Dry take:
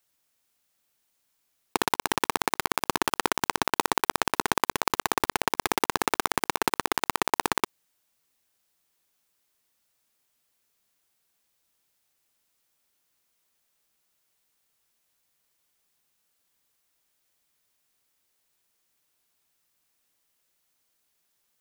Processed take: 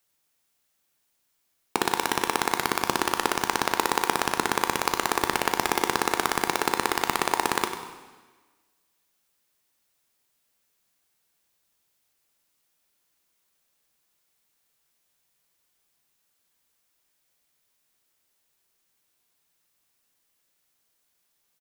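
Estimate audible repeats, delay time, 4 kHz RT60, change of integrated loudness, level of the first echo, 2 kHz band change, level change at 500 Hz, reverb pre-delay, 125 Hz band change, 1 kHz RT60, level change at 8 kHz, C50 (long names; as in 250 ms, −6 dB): 2, 97 ms, 1.3 s, +1.0 dB, −11.5 dB, +1.5 dB, +1.5 dB, 5 ms, +0.5 dB, 1.4 s, +1.0 dB, 7.0 dB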